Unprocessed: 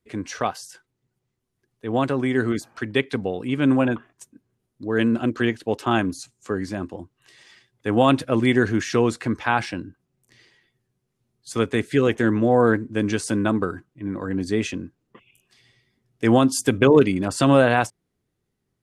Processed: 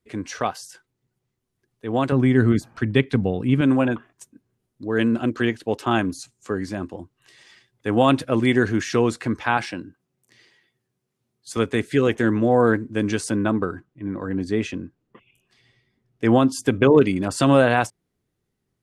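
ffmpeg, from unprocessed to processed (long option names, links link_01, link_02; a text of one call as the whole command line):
ffmpeg -i in.wav -filter_complex "[0:a]asettb=1/sr,asplit=3[link_01][link_02][link_03];[link_01]atrim=end=2.124[link_04];[link_02]atrim=start=2.12:end=3.61,asetpts=PTS-STARTPTS,afade=type=in:duration=0.004:curve=qsin,afade=type=out:start_time=1.486:duration=0.004:curve=qsin,bass=frequency=250:gain=11,treble=frequency=4000:gain=-3[link_05];[link_03]atrim=start=3.606[link_06];[link_04][link_05]acrossfade=duration=0.004:curve1=hsin:curve2=qsin[link_07];[link_07][link_06]acrossfade=duration=0.004:curve1=qsin:curve2=hsin,asettb=1/sr,asplit=3[link_08][link_09][link_10];[link_08]atrim=end=9.574[link_11];[link_09]atrim=start=9.57:end=11.57,asetpts=PTS-STARTPTS,afade=type=in:duration=0.004:curve=qsin,afade=type=out:start_time=1.996:duration=0.004:curve=qsin,highpass=frequency=170:poles=1[link_12];[link_10]atrim=start=11.566[link_13];[link_11][link_12]acrossfade=duration=0.004:curve1=hsin:curve2=qsin[link_14];[link_14][link_13]acrossfade=duration=0.004:curve1=qsin:curve2=hsin,asettb=1/sr,asplit=3[link_15][link_16][link_17];[link_15]atrim=end=13.294[link_18];[link_16]atrim=start=13.29:end=17.04,asetpts=PTS-STARTPTS,afade=type=in:duration=0.004:curve=qsin,afade=type=out:start_time=3.746:duration=0.004:curve=qsin,highshelf=frequency=4600:gain=-9[link_19];[link_17]atrim=start=17.036[link_20];[link_18][link_19]acrossfade=duration=0.004:curve1=hsin:curve2=qsin[link_21];[link_21][link_20]acrossfade=duration=0.004:curve1=qsin:curve2=hsin" out.wav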